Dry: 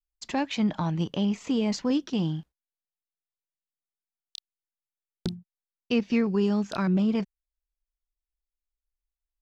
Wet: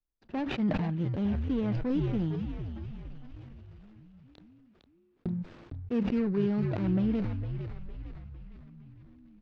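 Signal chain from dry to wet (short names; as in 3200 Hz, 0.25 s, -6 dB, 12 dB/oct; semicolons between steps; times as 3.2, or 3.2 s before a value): median filter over 41 samples; reverse; upward compressor, threshold -37 dBFS; reverse; Bessel low-pass 3200 Hz, order 4; frequency-shifting echo 0.456 s, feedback 53%, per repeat -86 Hz, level -8 dB; sustainer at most 26 dB/s; gain -4 dB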